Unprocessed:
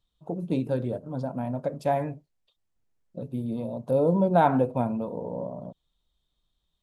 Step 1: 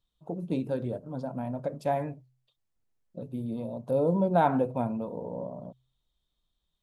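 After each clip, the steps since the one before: de-hum 64.06 Hz, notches 2; gain -3 dB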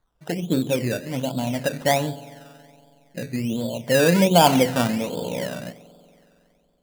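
spring tank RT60 2.7 s, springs 46 ms, chirp 75 ms, DRR 15.5 dB; decimation with a swept rate 16×, swing 60% 1.3 Hz; gain +8 dB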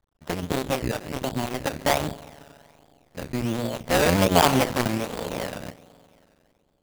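cycle switcher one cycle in 2, muted

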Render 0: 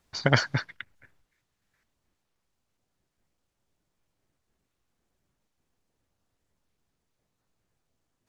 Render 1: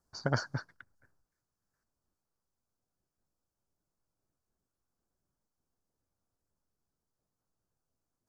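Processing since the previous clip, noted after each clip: band shelf 2700 Hz -16 dB 1.2 oct; gain -8 dB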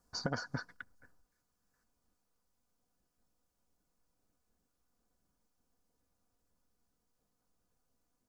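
comb 4.1 ms, depth 44%; compressor 6:1, threshold -37 dBFS, peak gain reduction 12.5 dB; gain +4.5 dB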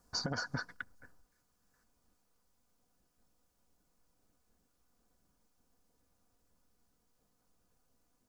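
limiter -29 dBFS, peak gain reduction 9.5 dB; gain +5 dB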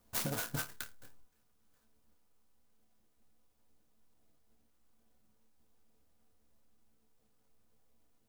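resonator bank D2 fifth, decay 0.21 s; clock jitter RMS 0.12 ms; gain +9 dB

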